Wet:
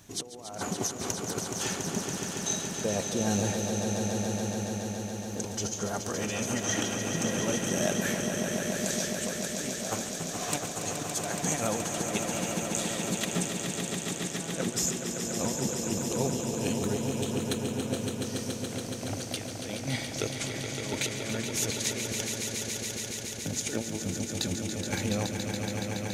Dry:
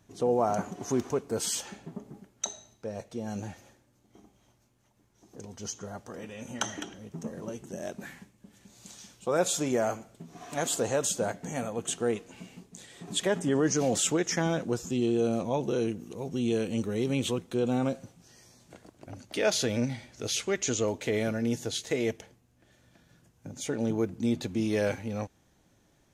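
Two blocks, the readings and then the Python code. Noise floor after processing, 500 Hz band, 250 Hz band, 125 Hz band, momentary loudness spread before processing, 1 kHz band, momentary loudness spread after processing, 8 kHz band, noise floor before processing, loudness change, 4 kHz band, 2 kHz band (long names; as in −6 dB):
−38 dBFS, −3.0 dB, −0.5 dB, +2.5 dB, 18 LU, 0.0 dB, 5 LU, +5.0 dB, −67 dBFS, −0.5 dB, +3.5 dB, +3.0 dB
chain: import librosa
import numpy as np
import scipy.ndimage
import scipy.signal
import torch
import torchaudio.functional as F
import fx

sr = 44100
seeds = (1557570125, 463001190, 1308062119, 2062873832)

y = fx.high_shelf(x, sr, hz=2400.0, db=10.0)
y = fx.over_compress(y, sr, threshold_db=-34.0, ratio=-0.5)
y = fx.echo_swell(y, sr, ms=141, loudest=5, wet_db=-7.5)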